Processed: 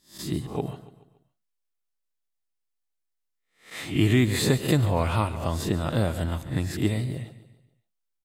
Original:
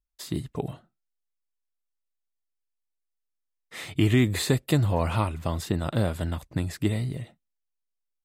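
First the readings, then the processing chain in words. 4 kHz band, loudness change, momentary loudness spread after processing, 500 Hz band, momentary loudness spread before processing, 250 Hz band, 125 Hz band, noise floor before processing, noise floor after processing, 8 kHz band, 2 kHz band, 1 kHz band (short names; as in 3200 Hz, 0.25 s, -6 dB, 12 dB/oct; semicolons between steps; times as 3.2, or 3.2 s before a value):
+2.0 dB, +1.0 dB, 15 LU, +1.5 dB, 13 LU, +1.5 dB, +1.0 dB, -81 dBFS, -79 dBFS, +2.0 dB, +2.0 dB, +1.5 dB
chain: spectral swells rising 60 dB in 0.36 s; on a send: feedback echo 0.142 s, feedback 46%, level -15.5 dB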